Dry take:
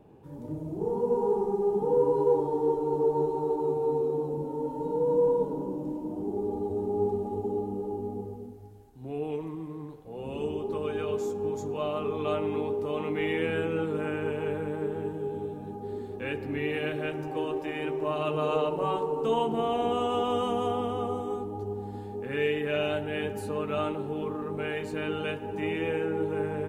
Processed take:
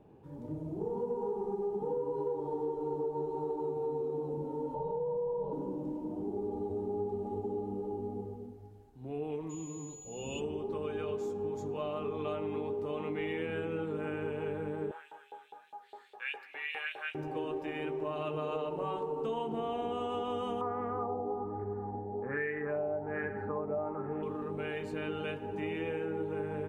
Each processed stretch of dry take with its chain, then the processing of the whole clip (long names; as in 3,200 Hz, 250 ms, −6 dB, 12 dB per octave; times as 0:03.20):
0:04.74–0:05.53: high-frequency loss of the air 260 metres + phaser with its sweep stopped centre 700 Hz, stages 4 + envelope flattener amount 50%
0:09.49–0:10.39: high shelf with overshoot 2,300 Hz +6.5 dB, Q 3 + steady tone 6,900 Hz −40 dBFS
0:14.91–0:17.15: parametric band 250 Hz −10 dB 2 octaves + auto-filter high-pass saw up 4.9 Hz 660–3,300 Hz
0:20.61–0:24.23: high shelf with overshoot 2,500 Hz −6.5 dB, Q 3 + auto-filter low-pass sine 1.2 Hz 670–1,800 Hz
whole clip: high-shelf EQ 6,200 Hz −8.5 dB; downward compressor, threshold −28 dBFS; level −3.5 dB